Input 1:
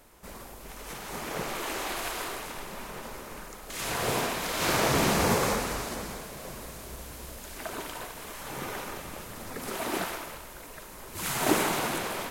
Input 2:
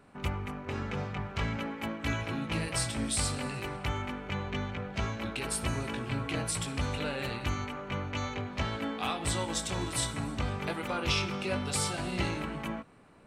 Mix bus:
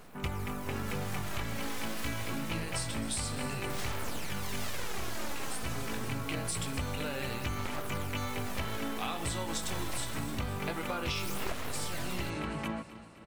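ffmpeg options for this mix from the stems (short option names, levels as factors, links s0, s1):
-filter_complex "[0:a]aeval=exprs='abs(val(0))':c=same,aphaser=in_gain=1:out_gain=1:delay=4:decay=0.48:speed=0.26:type=sinusoidal,volume=0.944[s0];[1:a]volume=1.19,asplit=2[s1][s2];[s2]volume=0.133,aecho=0:1:258|516|774|1032|1290|1548|1806|2064:1|0.54|0.292|0.157|0.085|0.0459|0.0248|0.0134[s3];[s0][s1][s3]amix=inputs=3:normalize=0,acompressor=threshold=0.0316:ratio=12"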